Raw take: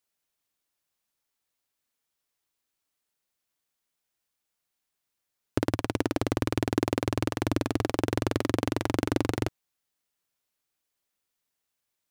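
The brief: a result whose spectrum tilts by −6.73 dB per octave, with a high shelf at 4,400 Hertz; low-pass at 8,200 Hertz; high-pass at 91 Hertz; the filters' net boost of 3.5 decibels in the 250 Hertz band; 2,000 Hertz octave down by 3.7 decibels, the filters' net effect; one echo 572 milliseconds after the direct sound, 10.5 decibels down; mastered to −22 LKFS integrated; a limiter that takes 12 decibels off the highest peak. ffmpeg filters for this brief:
ffmpeg -i in.wav -af "highpass=91,lowpass=8200,equalizer=frequency=250:width_type=o:gain=4.5,equalizer=frequency=2000:width_type=o:gain=-3.5,highshelf=frequency=4400:gain=-7,alimiter=limit=-20.5dB:level=0:latency=1,aecho=1:1:572:0.299,volume=13.5dB" out.wav

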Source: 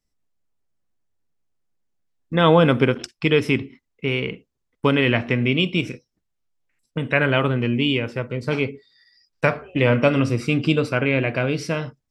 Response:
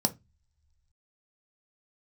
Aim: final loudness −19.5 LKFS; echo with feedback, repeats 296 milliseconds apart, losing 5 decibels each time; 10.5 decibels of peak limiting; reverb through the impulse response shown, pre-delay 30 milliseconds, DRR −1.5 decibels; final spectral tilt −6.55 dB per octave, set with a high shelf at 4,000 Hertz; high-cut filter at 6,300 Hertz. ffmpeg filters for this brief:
-filter_complex "[0:a]lowpass=6300,highshelf=frequency=4000:gain=8.5,alimiter=limit=-12.5dB:level=0:latency=1,aecho=1:1:296|592|888|1184|1480|1776|2072:0.562|0.315|0.176|0.0988|0.0553|0.031|0.0173,asplit=2[link_01][link_02];[1:a]atrim=start_sample=2205,adelay=30[link_03];[link_02][link_03]afir=irnorm=-1:irlink=0,volume=-5.5dB[link_04];[link_01][link_04]amix=inputs=2:normalize=0,volume=-3.5dB"

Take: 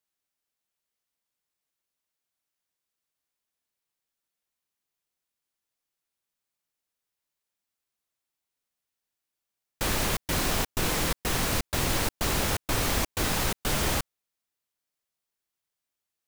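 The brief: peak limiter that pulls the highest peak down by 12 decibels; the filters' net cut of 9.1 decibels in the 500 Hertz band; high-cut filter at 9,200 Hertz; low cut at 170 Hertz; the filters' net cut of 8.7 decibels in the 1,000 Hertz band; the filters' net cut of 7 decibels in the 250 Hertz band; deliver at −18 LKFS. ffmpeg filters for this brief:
ffmpeg -i in.wav -af "highpass=170,lowpass=9200,equalizer=frequency=250:width_type=o:gain=-5,equalizer=frequency=500:width_type=o:gain=-7.5,equalizer=frequency=1000:width_type=o:gain=-9,volume=21.5dB,alimiter=limit=-9.5dB:level=0:latency=1" out.wav

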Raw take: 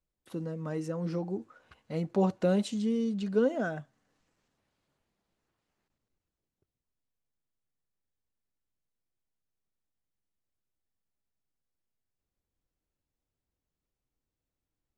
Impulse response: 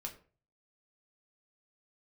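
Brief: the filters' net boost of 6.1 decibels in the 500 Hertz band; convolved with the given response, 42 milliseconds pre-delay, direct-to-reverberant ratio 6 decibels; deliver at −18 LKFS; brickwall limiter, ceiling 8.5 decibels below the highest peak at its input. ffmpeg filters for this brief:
-filter_complex "[0:a]equalizer=frequency=500:width_type=o:gain=7,alimiter=limit=-19dB:level=0:latency=1,asplit=2[link_01][link_02];[1:a]atrim=start_sample=2205,adelay=42[link_03];[link_02][link_03]afir=irnorm=-1:irlink=0,volume=-4dB[link_04];[link_01][link_04]amix=inputs=2:normalize=0,volume=12dB"

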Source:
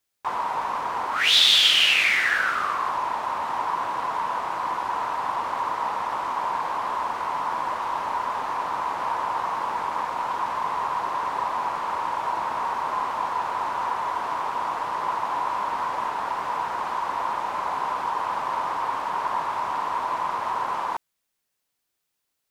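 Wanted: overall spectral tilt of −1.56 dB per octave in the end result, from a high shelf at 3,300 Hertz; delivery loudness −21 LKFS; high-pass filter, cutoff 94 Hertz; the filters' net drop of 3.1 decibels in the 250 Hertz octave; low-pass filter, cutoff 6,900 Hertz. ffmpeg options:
ffmpeg -i in.wav -af "highpass=94,lowpass=6900,equalizer=frequency=250:width_type=o:gain=-4,highshelf=frequency=3300:gain=-8.5,volume=5.5dB" out.wav

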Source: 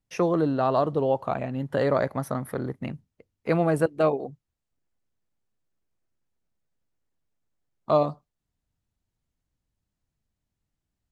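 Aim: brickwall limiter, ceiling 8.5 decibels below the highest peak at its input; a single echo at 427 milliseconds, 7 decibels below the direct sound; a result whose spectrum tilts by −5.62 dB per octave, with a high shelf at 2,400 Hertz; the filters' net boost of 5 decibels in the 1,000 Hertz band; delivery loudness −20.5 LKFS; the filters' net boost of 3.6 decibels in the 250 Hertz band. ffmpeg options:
ffmpeg -i in.wav -af "equalizer=frequency=250:width_type=o:gain=4.5,equalizer=frequency=1000:width_type=o:gain=8,highshelf=frequency=2400:gain=-8.5,alimiter=limit=-13.5dB:level=0:latency=1,aecho=1:1:427:0.447,volume=5.5dB" out.wav

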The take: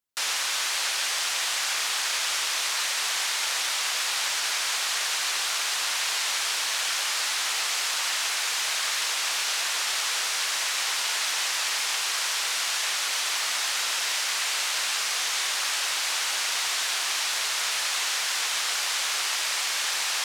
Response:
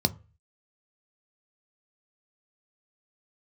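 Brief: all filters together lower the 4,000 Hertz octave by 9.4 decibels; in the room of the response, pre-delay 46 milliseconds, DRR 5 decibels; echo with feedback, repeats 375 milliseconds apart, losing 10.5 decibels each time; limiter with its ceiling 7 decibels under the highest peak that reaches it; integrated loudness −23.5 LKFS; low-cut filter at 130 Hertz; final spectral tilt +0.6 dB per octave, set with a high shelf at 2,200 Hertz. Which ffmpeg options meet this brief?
-filter_complex "[0:a]highpass=130,highshelf=frequency=2200:gain=-5.5,equalizer=frequency=4000:width_type=o:gain=-7,alimiter=level_in=3dB:limit=-24dB:level=0:latency=1,volume=-3dB,aecho=1:1:375|750|1125:0.299|0.0896|0.0269,asplit=2[link_01][link_02];[1:a]atrim=start_sample=2205,adelay=46[link_03];[link_02][link_03]afir=irnorm=-1:irlink=0,volume=-14.5dB[link_04];[link_01][link_04]amix=inputs=2:normalize=0,volume=9.5dB"

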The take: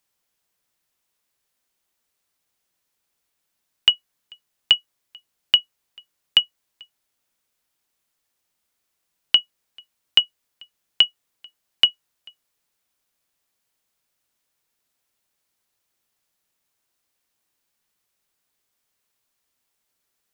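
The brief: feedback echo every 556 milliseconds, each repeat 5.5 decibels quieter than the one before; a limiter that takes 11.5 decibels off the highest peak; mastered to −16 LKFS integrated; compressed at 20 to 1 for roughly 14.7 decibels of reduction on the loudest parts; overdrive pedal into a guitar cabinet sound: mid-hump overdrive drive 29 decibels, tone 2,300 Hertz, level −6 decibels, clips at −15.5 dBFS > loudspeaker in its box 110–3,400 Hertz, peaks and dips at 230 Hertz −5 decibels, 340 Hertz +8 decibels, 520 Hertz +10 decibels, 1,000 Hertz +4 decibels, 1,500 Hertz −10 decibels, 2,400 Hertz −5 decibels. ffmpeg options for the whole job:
ffmpeg -i in.wav -filter_complex "[0:a]acompressor=threshold=-25dB:ratio=20,alimiter=limit=-16dB:level=0:latency=1,aecho=1:1:556|1112|1668|2224|2780|3336|3892:0.531|0.281|0.149|0.079|0.0419|0.0222|0.0118,asplit=2[link_01][link_02];[link_02]highpass=frequency=720:poles=1,volume=29dB,asoftclip=type=tanh:threshold=-15.5dB[link_03];[link_01][link_03]amix=inputs=2:normalize=0,lowpass=frequency=2300:poles=1,volume=-6dB,highpass=110,equalizer=frequency=230:width_type=q:width=4:gain=-5,equalizer=frequency=340:width_type=q:width=4:gain=8,equalizer=frequency=520:width_type=q:width=4:gain=10,equalizer=frequency=1000:width_type=q:width=4:gain=4,equalizer=frequency=1500:width_type=q:width=4:gain=-10,equalizer=frequency=2400:width_type=q:width=4:gain=-5,lowpass=frequency=3400:width=0.5412,lowpass=frequency=3400:width=1.3066,volume=19.5dB" out.wav

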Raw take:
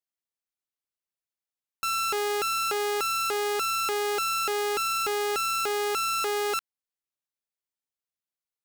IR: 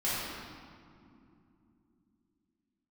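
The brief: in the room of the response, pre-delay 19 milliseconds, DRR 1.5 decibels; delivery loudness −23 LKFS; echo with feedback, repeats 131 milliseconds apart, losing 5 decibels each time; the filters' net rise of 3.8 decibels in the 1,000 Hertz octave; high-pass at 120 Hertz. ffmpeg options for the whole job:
-filter_complex "[0:a]highpass=120,equalizer=frequency=1000:width_type=o:gain=6,aecho=1:1:131|262|393|524|655|786|917:0.562|0.315|0.176|0.0988|0.0553|0.031|0.0173,asplit=2[link_01][link_02];[1:a]atrim=start_sample=2205,adelay=19[link_03];[link_02][link_03]afir=irnorm=-1:irlink=0,volume=-10.5dB[link_04];[link_01][link_04]amix=inputs=2:normalize=0"

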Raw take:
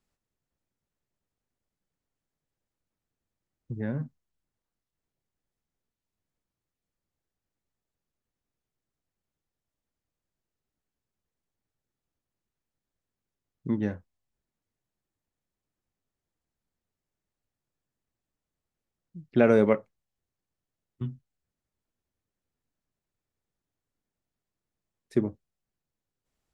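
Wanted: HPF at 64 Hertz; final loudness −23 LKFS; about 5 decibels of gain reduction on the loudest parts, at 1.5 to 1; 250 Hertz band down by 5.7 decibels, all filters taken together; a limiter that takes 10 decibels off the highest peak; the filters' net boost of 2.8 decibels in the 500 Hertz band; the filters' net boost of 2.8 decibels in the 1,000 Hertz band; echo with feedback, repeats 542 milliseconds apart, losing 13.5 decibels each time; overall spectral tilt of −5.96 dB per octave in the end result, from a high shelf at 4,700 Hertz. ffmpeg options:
ffmpeg -i in.wav -af "highpass=64,equalizer=frequency=250:width_type=o:gain=-9,equalizer=frequency=500:width_type=o:gain=5,equalizer=frequency=1000:width_type=o:gain=3,highshelf=frequency=4700:gain=-4,acompressor=threshold=-28dB:ratio=1.5,alimiter=limit=-21.5dB:level=0:latency=1,aecho=1:1:542|1084:0.211|0.0444,volume=14.5dB" out.wav

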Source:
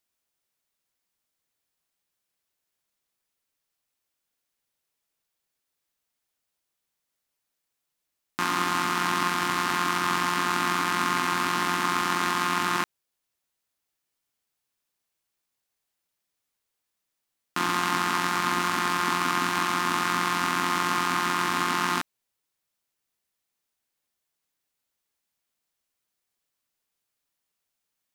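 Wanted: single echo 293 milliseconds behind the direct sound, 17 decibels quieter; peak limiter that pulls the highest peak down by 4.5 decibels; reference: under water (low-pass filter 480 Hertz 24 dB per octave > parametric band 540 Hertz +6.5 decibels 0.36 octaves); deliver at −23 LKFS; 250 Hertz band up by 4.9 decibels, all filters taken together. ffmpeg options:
ffmpeg -i in.wav -af "equalizer=frequency=250:width_type=o:gain=6.5,alimiter=limit=-12.5dB:level=0:latency=1,lowpass=frequency=480:width=0.5412,lowpass=frequency=480:width=1.3066,equalizer=frequency=540:width_type=o:width=0.36:gain=6.5,aecho=1:1:293:0.141,volume=10.5dB" out.wav

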